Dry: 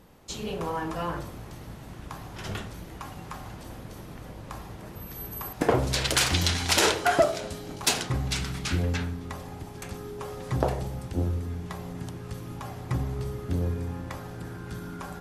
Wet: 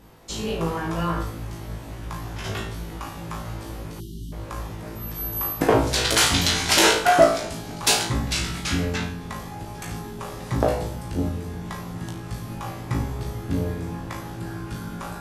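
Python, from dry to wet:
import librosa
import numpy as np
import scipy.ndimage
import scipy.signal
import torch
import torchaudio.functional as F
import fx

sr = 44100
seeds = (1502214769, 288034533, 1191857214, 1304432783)

y = fx.room_flutter(x, sr, wall_m=3.1, rt60_s=0.38)
y = fx.spec_erase(y, sr, start_s=4.0, length_s=0.32, low_hz=390.0, high_hz=2800.0)
y = y * 10.0 ** (2.5 / 20.0)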